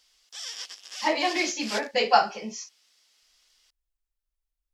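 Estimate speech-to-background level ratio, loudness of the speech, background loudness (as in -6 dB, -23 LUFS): 11.5 dB, -25.0 LUFS, -36.5 LUFS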